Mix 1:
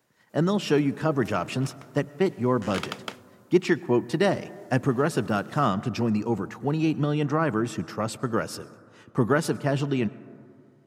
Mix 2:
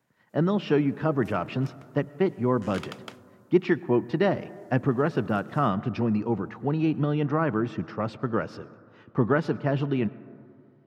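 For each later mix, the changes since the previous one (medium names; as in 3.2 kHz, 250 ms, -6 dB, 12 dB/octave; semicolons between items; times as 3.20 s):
speech: add distance through air 260 m; background -7.0 dB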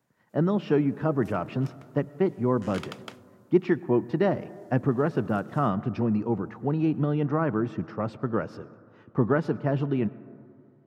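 speech: add peaking EQ 3.5 kHz -6.5 dB 2.2 oct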